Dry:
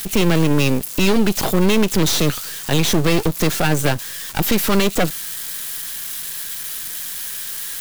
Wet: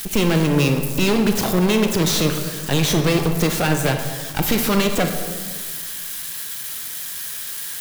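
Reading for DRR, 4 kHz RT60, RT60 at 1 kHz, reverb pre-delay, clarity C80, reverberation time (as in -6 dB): 5.0 dB, 0.90 s, 1.5 s, 25 ms, 8.0 dB, 1.6 s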